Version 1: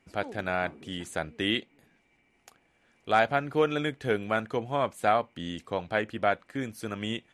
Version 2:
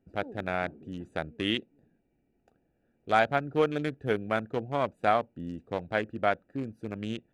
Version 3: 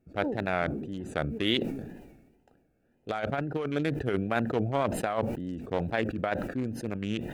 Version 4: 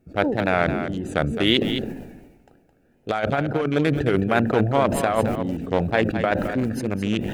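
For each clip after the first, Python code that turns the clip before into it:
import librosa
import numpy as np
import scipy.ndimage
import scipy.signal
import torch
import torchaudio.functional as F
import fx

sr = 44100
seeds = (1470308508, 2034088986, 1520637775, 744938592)

y1 = fx.wiener(x, sr, points=41)
y2 = fx.over_compress(y1, sr, threshold_db=-27.0, ratio=-0.5)
y2 = fx.wow_flutter(y2, sr, seeds[0], rate_hz=2.1, depth_cents=100.0)
y2 = fx.sustainer(y2, sr, db_per_s=48.0)
y3 = y2 + 10.0 ** (-9.0 / 20.0) * np.pad(y2, (int(215 * sr / 1000.0), 0))[:len(y2)]
y3 = F.gain(torch.from_numpy(y3), 8.0).numpy()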